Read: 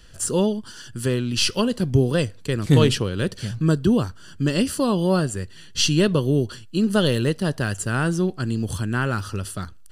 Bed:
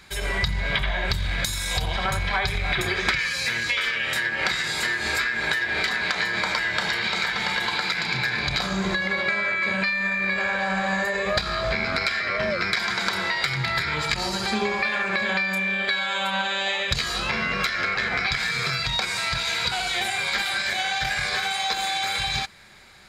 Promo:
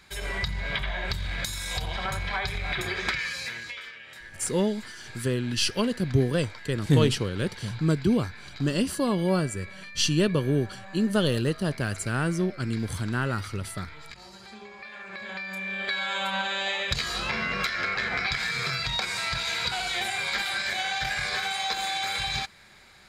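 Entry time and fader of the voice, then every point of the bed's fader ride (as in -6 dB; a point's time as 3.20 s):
4.20 s, -4.5 dB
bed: 3.29 s -5.5 dB
4.06 s -20.5 dB
14.72 s -20.5 dB
16.04 s -3.5 dB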